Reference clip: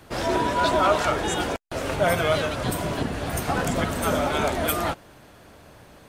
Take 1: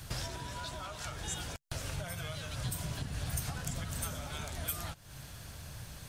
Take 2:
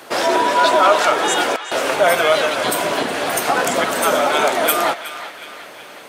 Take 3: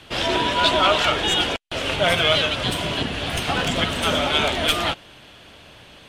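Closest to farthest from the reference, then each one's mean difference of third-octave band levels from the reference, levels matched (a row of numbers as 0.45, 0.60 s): 3, 2, 1; 3.5, 5.5, 8.0 dB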